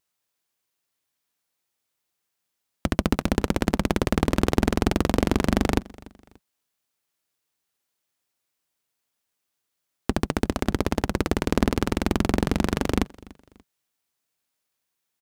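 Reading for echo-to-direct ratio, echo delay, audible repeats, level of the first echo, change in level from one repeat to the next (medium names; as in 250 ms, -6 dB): -22.5 dB, 291 ms, 2, -23.0 dB, -9.0 dB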